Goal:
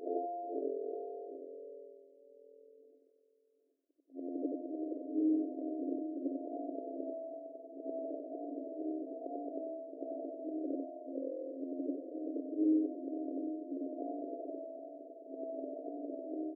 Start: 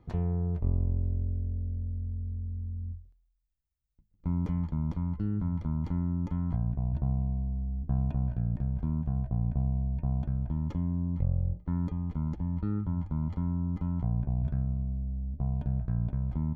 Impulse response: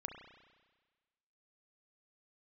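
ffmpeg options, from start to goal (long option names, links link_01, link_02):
-af "afftfilt=real='re':imag='-im':win_size=8192:overlap=0.75,aecho=1:1:769:0.282,afftfilt=real='re*between(b*sr/4096,260,700)':imag='im*between(b*sr/4096,260,700)':win_size=4096:overlap=0.75,volume=15dB"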